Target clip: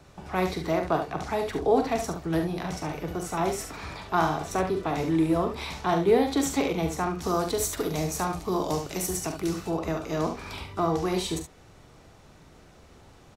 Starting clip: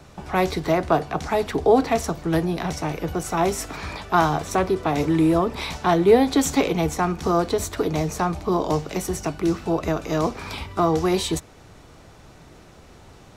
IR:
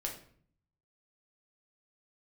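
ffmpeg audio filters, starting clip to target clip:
-filter_complex "[0:a]asettb=1/sr,asplit=3[link_01][link_02][link_03];[link_01]atrim=end=7.214[link_04];[link_02]atrim=start=7.21:end=9.7,asetpts=PTS-STARTPTS,afade=type=in:duration=0.004:curve=qsin,afade=type=out:start_time=2.486:duration=0.004:curve=qsin,highshelf=frequency=5200:gain=11.5[link_05];[link_03]atrim=start=9.696[link_06];[link_04][link_05]acrossfade=duration=0.004:curve1=hsin:curve2=qsin[link_07];[link_07][link_06]acrossfade=duration=0.004:curve1=qsin:curve2=hsin,aecho=1:1:43|71:0.376|0.398,volume=-6.5dB"

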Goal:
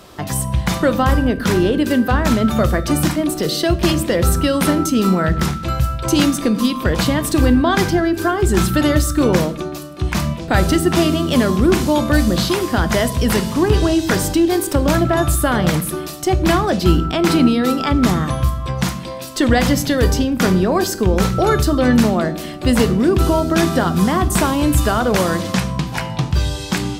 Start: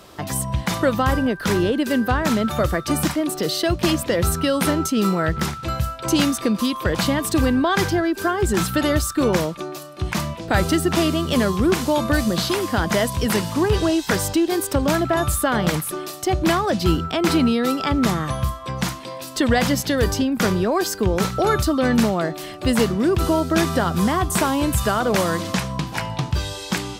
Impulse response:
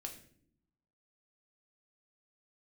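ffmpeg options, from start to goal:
-filter_complex "[0:a]asplit=2[link_01][link_02];[1:a]atrim=start_sample=2205,lowshelf=frequency=230:gain=8.5[link_03];[link_02][link_03]afir=irnorm=-1:irlink=0,volume=-1.5dB[link_04];[link_01][link_04]amix=inputs=2:normalize=0,volume=-1dB"

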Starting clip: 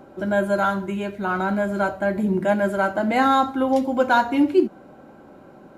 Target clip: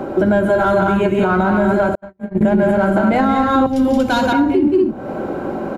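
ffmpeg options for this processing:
ffmpeg -i in.wav -filter_complex "[0:a]highshelf=frequency=3000:gain=-7.5,aecho=1:1:174.9|236.2:0.501|0.562,asplit=2[link_01][link_02];[link_02]asoftclip=type=tanh:threshold=-21.5dB,volume=-9.5dB[link_03];[link_01][link_03]amix=inputs=2:normalize=0,asettb=1/sr,asplit=3[link_04][link_05][link_06];[link_04]atrim=end=3.664[link_07];[link_05]atrim=start=3.66:end=4.33,asetpts=PTS-STARTPTS,afade=type=in:duration=0.004:curve=qsin,afade=type=out:start_time=0.666:duration=0.004:curve=qsin,acrossover=split=180|3000[link_08][link_09][link_10];[link_09]acompressor=threshold=-43dB:ratio=2[link_11];[link_08][link_11][link_10]amix=inputs=3:normalize=0[link_12];[link_06]atrim=start=4.326[link_13];[link_07][link_12]acrossfade=duration=0.004:curve1=hsin:curve2=qsin[link_14];[link_14][link_13]acrossfade=duration=0.004:curve1=qsin:curve2=hsin,equalizer=frequency=360:width_type=o:width=1.3:gain=3.5,acrossover=split=140[link_15][link_16];[link_16]acompressor=threshold=-27dB:ratio=16[link_17];[link_15][link_17]amix=inputs=2:normalize=0,bandreject=frequency=50:width_type=h:width=6,bandreject=frequency=100:width_type=h:width=6,bandreject=frequency=150:width_type=h:width=6,bandreject=frequency=200:width_type=h:width=6,bandreject=frequency=250:width_type=h:width=6,bandreject=frequency=300:width_type=h:width=6,asettb=1/sr,asplit=3[link_18][link_19][link_20];[link_18]atrim=end=1.954[link_21];[link_19]atrim=start=1.95:end=2.41,asetpts=PTS-STARTPTS,afade=type=in:duration=0.004:curve=qsin,afade=type=out:start_time=0.456:duration=0.004:curve=qsin,agate=range=-53dB:threshold=-24dB:ratio=16:detection=peak[link_22];[link_20]atrim=start=2.406[link_23];[link_21][link_22]acrossfade=duration=0.004:curve1=hsin:curve2=qsin[link_24];[link_24][link_23]acrossfade=duration=0.004:curve1=qsin:curve2=hsin,alimiter=level_in=22.5dB:limit=-1dB:release=50:level=0:latency=1,volume=-5.5dB" out.wav

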